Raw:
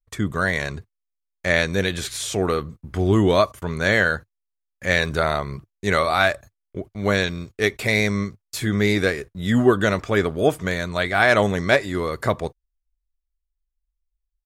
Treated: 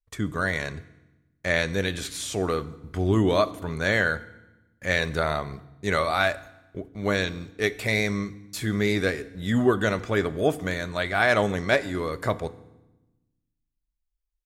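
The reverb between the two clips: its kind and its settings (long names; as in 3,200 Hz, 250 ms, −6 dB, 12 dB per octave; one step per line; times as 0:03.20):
feedback delay network reverb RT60 1 s, low-frequency decay 1.55×, high-frequency decay 0.9×, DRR 14.5 dB
level −4.5 dB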